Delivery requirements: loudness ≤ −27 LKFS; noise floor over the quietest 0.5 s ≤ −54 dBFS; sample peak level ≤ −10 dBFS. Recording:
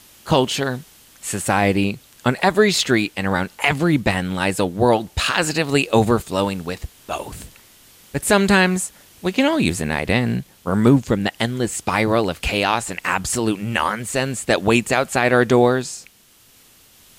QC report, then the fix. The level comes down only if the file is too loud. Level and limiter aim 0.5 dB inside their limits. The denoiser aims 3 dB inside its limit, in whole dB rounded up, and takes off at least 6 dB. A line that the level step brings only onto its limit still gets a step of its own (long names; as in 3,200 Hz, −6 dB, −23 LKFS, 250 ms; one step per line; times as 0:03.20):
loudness −19.5 LKFS: out of spec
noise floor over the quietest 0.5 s −53 dBFS: out of spec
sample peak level −3.5 dBFS: out of spec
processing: level −8 dB